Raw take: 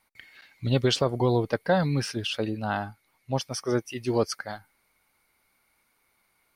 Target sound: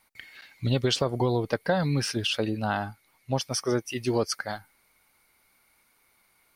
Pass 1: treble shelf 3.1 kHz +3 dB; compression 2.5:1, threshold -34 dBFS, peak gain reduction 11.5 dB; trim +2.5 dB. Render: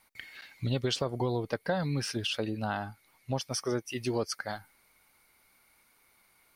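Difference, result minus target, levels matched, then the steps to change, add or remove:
compression: peak gain reduction +5.5 dB
change: compression 2.5:1, threshold -25 dBFS, peak gain reduction 6 dB

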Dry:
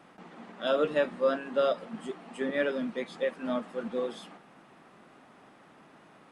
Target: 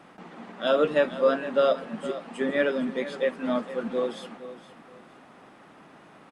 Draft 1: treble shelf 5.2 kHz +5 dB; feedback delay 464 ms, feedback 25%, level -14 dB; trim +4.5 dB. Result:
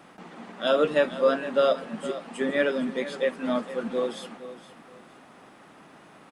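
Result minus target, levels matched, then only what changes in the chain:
8 kHz band +5.0 dB
change: treble shelf 5.2 kHz -2 dB

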